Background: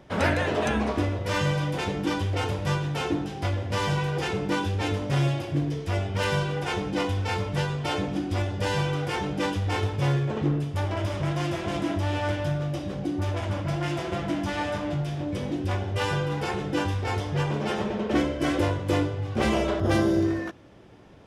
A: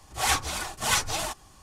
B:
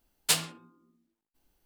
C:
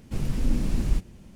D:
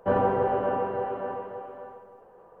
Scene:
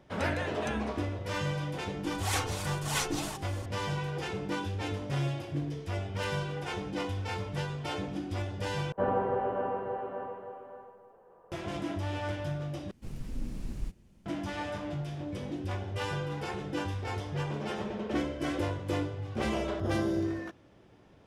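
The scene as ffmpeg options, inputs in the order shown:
-filter_complex "[0:a]volume=-7.5dB[a];[1:a]acompressor=mode=upward:threshold=-27dB:ratio=2.5:attack=3.2:release=140:knee=2.83:detection=peak[b];[a]asplit=3[c][d][e];[c]atrim=end=8.924[f];[4:a]atrim=end=2.6,asetpts=PTS-STARTPTS,volume=-5.5dB[g];[d]atrim=start=11.516:end=12.914[h];[3:a]atrim=end=1.35,asetpts=PTS-STARTPTS,volume=-12.5dB[i];[e]atrim=start=14.256[j];[b]atrim=end=1.62,asetpts=PTS-STARTPTS,volume=-8dB,afade=t=in:d=0.004:c=hsin,afade=t=out:st=1.616:d=0.004:c=hsin,adelay=2040[k];[f][g]acrossfade=d=0.004:c1=hsin:c2=hsin[l];[l][h]acrossfade=d=0.004:c1=hsin:c2=hsin[m];[m][i]acrossfade=d=0.004:c1=hsin:c2=hsin[n];[n][j]acrossfade=d=0.004:c1=hsin:c2=hsin[o];[o][k]amix=inputs=2:normalize=0"

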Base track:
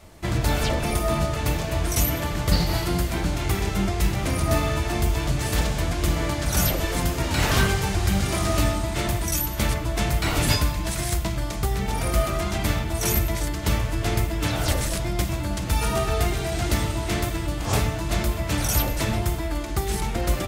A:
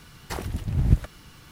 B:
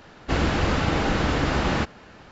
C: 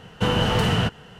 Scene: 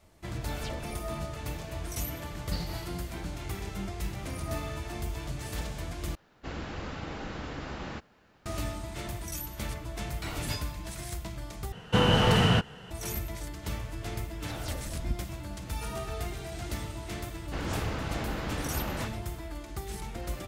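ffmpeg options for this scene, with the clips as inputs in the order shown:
-filter_complex "[2:a]asplit=2[a][b];[0:a]volume=-12.5dB[c];[a]acrusher=bits=10:mix=0:aa=0.000001[d];[1:a]aecho=1:1:3.8:0.56[e];[c]asplit=3[f][g][h];[f]atrim=end=6.154[i];[d]atrim=end=2.31,asetpts=PTS-STARTPTS,volume=-15.5dB[j];[g]atrim=start=8.456:end=11.724[k];[3:a]atrim=end=1.19,asetpts=PTS-STARTPTS,volume=-1.5dB[l];[h]atrim=start=12.906[m];[e]atrim=end=1.51,asetpts=PTS-STARTPTS,volume=-14.5dB,afade=t=in:d=0.004:c=hsin,afade=t=out:st=1.506:d=0.004:c=hsin,adelay=14180[n];[b]atrim=end=2.31,asetpts=PTS-STARTPTS,volume=-12.5dB,afade=t=in:d=0.004:c=hsin,afade=t=out:st=2.306:d=0.004:c=hsin,adelay=17230[o];[i][j]acrossfade=d=0.004:c1=hsin:c2=hsin[p];[p][k]acrossfade=d=0.004:c1=hsin:c2=hsin[q];[q][l]acrossfade=d=0.004:c1=hsin:c2=hsin[r];[r][m]acrossfade=d=0.004:c1=hsin:c2=hsin[s];[s][n][o]amix=inputs=3:normalize=0"

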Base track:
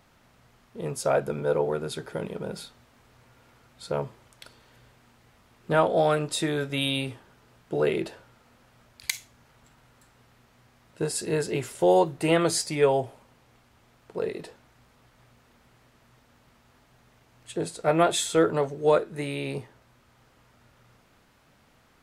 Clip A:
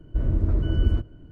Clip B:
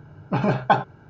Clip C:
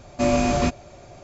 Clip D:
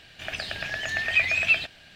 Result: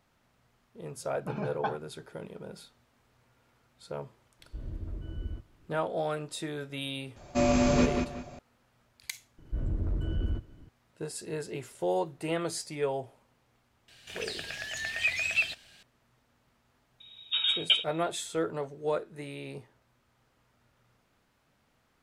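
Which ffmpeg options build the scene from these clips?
-filter_complex "[2:a]asplit=2[a][b];[1:a]asplit=2[c][d];[0:a]volume=-9.5dB[e];[3:a]asplit=2[f][g];[g]adelay=185,lowpass=f=5k:p=1,volume=-4.5dB,asplit=2[h][i];[i]adelay=185,lowpass=f=5k:p=1,volume=0.29,asplit=2[j][k];[k]adelay=185,lowpass=f=5k:p=1,volume=0.29,asplit=2[l][m];[m]adelay=185,lowpass=f=5k:p=1,volume=0.29[n];[f][h][j][l][n]amix=inputs=5:normalize=0[o];[d]asoftclip=type=tanh:threshold=-17dB[p];[4:a]equalizer=f=9.5k:w=0.5:g=14[q];[b]lowpass=f=3.3k:t=q:w=0.5098,lowpass=f=3.3k:t=q:w=0.6013,lowpass=f=3.3k:t=q:w=0.9,lowpass=f=3.3k:t=q:w=2.563,afreqshift=-3900[r];[a]atrim=end=1.09,asetpts=PTS-STARTPTS,volume=-15dB,afade=t=in:d=0.004:c=hsin,afade=t=out:st=1.086:d=0.004:c=hsin,adelay=940[s];[c]atrim=end=1.31,asetpts=PTS-STARTPTS,volume=-16.5dB,afade=t=in:d=0.004:c=hsin,afade=t=out:st=1.306:d=0.004:c=hsin,adelay=4390[t];[o]atrim=end=1.23,asetpts=PTS-STARTPTS,volume=-5dB,afade=t=in:d=0.004:c=hsin,afade=t=out:st=1.226:d=0.004:c=hsin,adelay=7160[u];[p]atrim=end=1.31,asetpts=PTS-STARTPTS,volume=-6.5dB,afade=t=in:d=0.004:c=hsin,afade=t=out:st=1.306:d=0.004:c=hsin,adelay=413658S[v];[q]atrim=end=1.95,asetpts=PTS-STARTPTS,volume=-9.5dB,afade=t=in:d=0.004:c=hsin,afade=t=out:st=1.946:d=0.004:c=hsin,adelay=13880[w];[r]atrim=end=1.09,asetpts=PTS-STARTPTS,volume=-7dB,afade=t=in:d=0.004:c=hsin,afade=t=out:st=1.086:d=0.004:c=hsin,adelay=749700S[x];[e][s][t][u][v][w][x]amix=inputs=7:normalize=0"

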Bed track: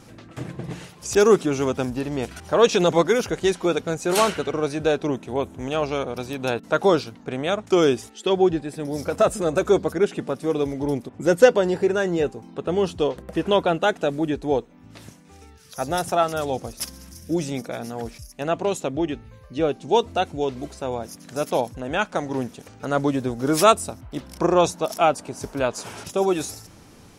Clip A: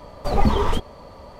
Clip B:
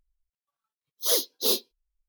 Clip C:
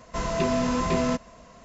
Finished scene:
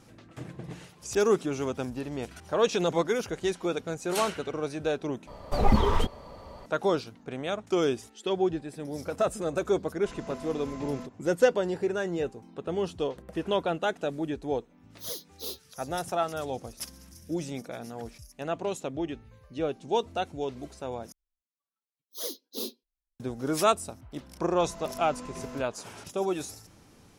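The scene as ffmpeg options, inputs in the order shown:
-filter_complex "[3:a]asplit=2[a][b];[2:a]asplit=2[c][d];[0:a]volume=-8dB[e];[d]equalizer=f=240:t=o:w=0.91:g=13[f];[e]asplit=3[g][h][i];[g]atrim=end=5.274[j];[1:a]atrim=end=1.39,asetpts=PTS-STARTPTS,volume=-3.5dB[k];[h]atrim=start=6.656:end=21.124[l];[f]atrim=end=2.08,asetpts=PTS-STARTPTS,volume=-12.5dB[m];[i]atrim=start=23.196[n];[a]atrim=end=1.64,asetpts=PTS-STARTPTS,volume=-17dB,afade=t=in:d=0.004:c=hsin,afade=t=out:st=1.636:d=0.004:c=hsin,adelay=9900[o];[c]atrim=end=2.08,asetpts=PTS-STARTPTS,volume=-13.5dB,afade=t=in:d=0.004:c=hsin,afade=t=out:st=2.076:d=0.004:c=hsin,adelay=13980[p];[b]atrim=end=1.64,asetpts=PTS-STARTPTS,volume=-17dB,afade=t=in:d=0.004:c=hsin,afade=t=out:st=1.636:d=0.004:c=hsin,adelay=24450[q];[j][k]acrossfade=d=0.004:c1=hsin:c2=hsin[r];[r][l]acrossfade=d=0.004:c1=hsin:c2=hsin[s];[s][m]acrossfade=d=0.004:c1=hsin:c2=hsin[t];[t][n]acrossfade=d=0.004:c1=hsin:c2=hsin[u];[u][o][p][q]amix=inputs=4:normalize=0"

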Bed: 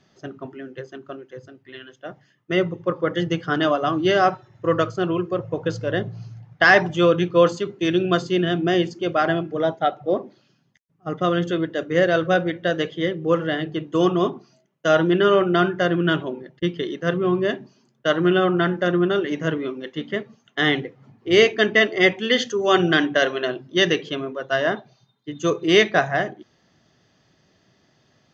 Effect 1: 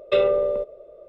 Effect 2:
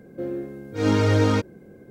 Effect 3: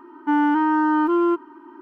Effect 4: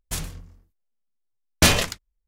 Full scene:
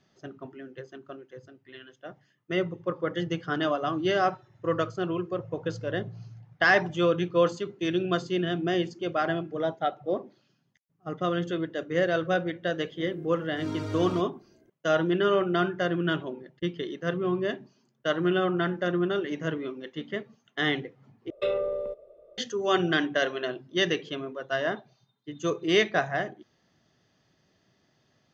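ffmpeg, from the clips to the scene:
-filter_complex "[0:a]volume=-7dB[a];[2:a]aecho=1:1:3:0.61[b];[a]asplit=2[c][d];[c]atrim=end=21.304[e];[1:a]atrim=end=1.08,asetpts=PTS-STARTPTS,volume=-8.5dB[f];[d]atrim=start=22.376[g];[b]atrim=end=1.9,asetpts=PTS-STARTPTS,volume=-15.5dB,afade=t=in:d=0.004:c=hsin,afade=t=out:st=1.896:d=0.004:c=hsin,adelay=12800[h];[e][f]acrossfade=d=0.004:c1=hsin:c2=hsin[i];[i][g]acrossfade=d=0.004:c1=hsin:c2=hsin[j];[j][h]amix=inputs=2:normalize=0"

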